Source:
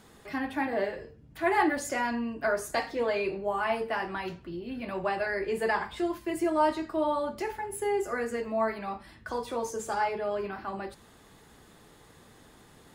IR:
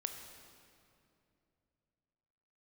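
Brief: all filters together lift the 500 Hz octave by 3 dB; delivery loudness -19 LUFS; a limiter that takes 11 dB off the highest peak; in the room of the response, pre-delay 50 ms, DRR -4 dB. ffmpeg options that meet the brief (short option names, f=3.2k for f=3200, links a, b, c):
-filter_complex "[0:a]equalizer=f=500:t=o:g=4,alimiter=limit=-23.5dB:level=0:latency=1,asplit=2[a][b];[1:a]atrim=start_sample=2205,adelay=50[c];[b][c]afir=irnorm=-1:irlink=0,volume=4.5dB[d];[a][d]amix=inputs=2:normalize=0,volume=8.5dB"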